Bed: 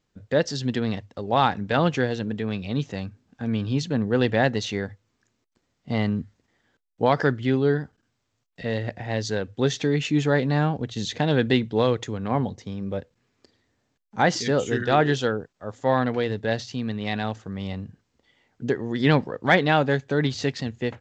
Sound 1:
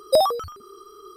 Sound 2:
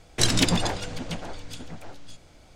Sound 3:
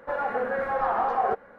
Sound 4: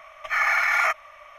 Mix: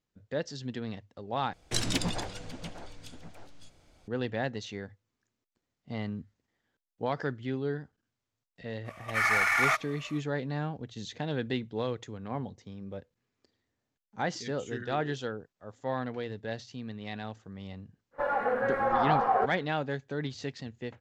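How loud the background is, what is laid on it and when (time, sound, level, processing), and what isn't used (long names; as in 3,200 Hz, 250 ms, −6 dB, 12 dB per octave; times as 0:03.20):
bed −11.5 dB
0:01.53: overwrite with 2 −8.5 dB
0:08.84: mix in 4 −4 dB, fades 0.05 s + variable-slope delta modulation 64 kbit/s
0:18.11: mix in 3 −1 dB, fades 0.10 s
not used: 1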